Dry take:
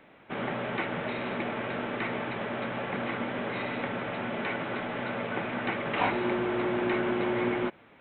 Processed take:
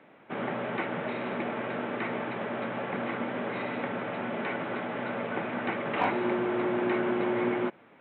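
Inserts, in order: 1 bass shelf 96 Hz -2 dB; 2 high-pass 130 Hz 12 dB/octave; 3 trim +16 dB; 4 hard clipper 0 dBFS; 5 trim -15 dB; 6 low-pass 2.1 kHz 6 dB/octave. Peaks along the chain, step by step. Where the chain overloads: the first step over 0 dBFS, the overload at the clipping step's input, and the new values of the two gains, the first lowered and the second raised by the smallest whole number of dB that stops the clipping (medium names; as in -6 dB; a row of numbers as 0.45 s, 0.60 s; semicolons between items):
-13.5 dBFS, -13.0 dBFS, +3.0 dBFS, 0.0 dBFS, -15.0 dBFS, -15.0 dBFS; step 3, 3.0 dB; step 3 +13 dB, step 5 -12 dB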